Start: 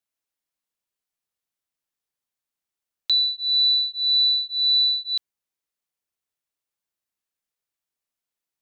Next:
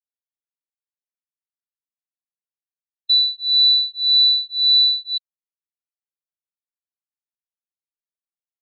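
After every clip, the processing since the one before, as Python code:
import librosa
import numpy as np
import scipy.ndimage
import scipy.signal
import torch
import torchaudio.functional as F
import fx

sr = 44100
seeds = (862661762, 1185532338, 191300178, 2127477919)

y = fx.spectral_expand(x, sr, expansion=1.5)
y = y * 10.0 ** (5.0 / 20.0)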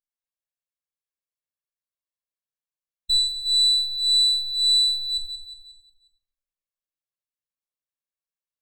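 y = fx.lower_of_two(x, sr, delay_ms=1.8)
y = fx.echo_feedback(y, sr, ms=180, feedback_pct=48, wet_db=-9.0)
y = fx.room_shoebox(y, sr, seeds[0], volume_m3=1000.0, walls='furnished', distance_m=2.2)
y = y * 10.0 ** (-5.0 / 20.0)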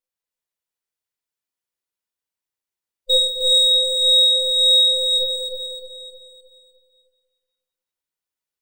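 y = fx.band_invert(x, sr, width_hz=500)
y = fx.echo_feedback(y, sr, ms=307, feedback_pct=44, wet_db=-4)
y = y * 10.0 ** (3.5 / 20.0)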